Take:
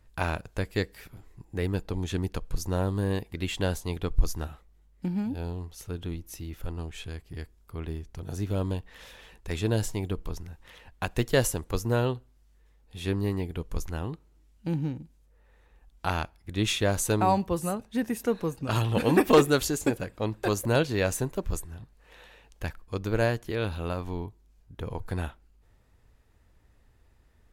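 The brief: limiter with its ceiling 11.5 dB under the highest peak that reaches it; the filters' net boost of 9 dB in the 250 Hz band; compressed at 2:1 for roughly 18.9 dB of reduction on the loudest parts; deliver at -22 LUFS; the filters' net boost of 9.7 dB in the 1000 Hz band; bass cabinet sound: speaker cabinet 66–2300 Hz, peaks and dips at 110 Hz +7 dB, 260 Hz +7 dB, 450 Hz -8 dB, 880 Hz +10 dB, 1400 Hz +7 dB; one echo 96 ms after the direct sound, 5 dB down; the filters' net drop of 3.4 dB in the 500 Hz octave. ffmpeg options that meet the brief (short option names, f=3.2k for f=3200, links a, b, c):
-af "equalizer=f=250:t=o:g=8,equalizer=f=500:t=o:g=-5,equalizer=f=1k:t=o:g=5.5,acompressor=threshold=-49dB:ratio=2,alimiter=level_in=11dB:limit=-24dB:level=0:latency=1,volume=-11dB,highpass=f=66:w=0.5412,highpass=f=66:w=1.3066,equalizer=f=110:t=q:w=4:g=7,equalizer=f=260:t=q:w=4:g=7,equalizer=f=450:t=q:w=4:g=-8,equalizer=f=880:t=q:w=4:g=10,equalizer=f=1.4k:t=q:w=4:g=7,lowpass=f=2.3k:w=0.5412,lowpass=f=2.3k:w=1.3066,aecho=1:1:96:0.562,volume=20.5dB"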